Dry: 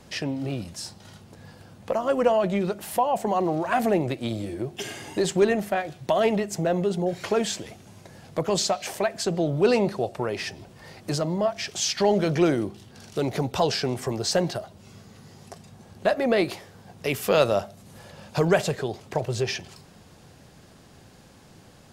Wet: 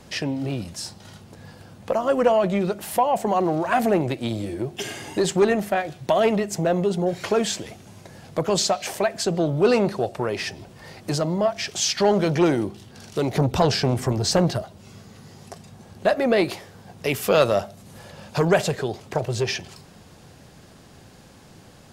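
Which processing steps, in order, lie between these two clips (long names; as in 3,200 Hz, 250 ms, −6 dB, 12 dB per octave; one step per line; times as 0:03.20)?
0:13.36–0:14.63: low-shelf EQ 220 Hz +11 dB
saturating transformer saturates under 600 Hz
level +3 dB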